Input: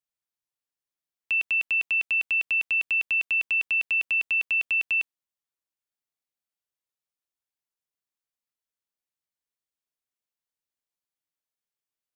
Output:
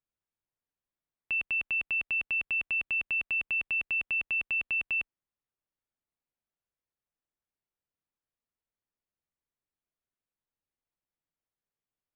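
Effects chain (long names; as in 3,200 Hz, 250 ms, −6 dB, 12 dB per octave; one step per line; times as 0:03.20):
low-pass filter 2,800 Hz 12 dB per octave
spectral tilt −2 dB per octave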